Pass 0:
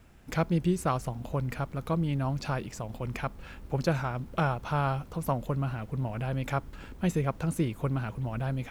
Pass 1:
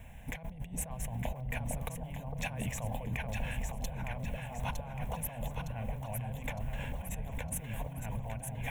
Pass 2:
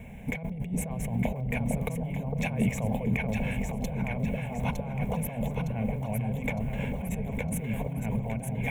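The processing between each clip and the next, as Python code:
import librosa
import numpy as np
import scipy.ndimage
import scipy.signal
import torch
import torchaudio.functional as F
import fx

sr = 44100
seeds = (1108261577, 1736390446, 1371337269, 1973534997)

y1 = fx.fixed_phaser(x, sr, hz=1300.0, stages=6)
y1 = fx.over_compress(y1, sr, threshold_db=-42.0, ratio=-1.0)
y1 = fx.echo_alternate(y1, sr, ms=455, hz=820.0, feedback_pct=69, wet_db=-2.0)
y1 = F.gain(torch.from_numpy(y1), 1.0).numpy()
y2 = fx.small_body(y1, sr, hz=(210.0, 400.0, 2200.0), ring_ms=25, db=15)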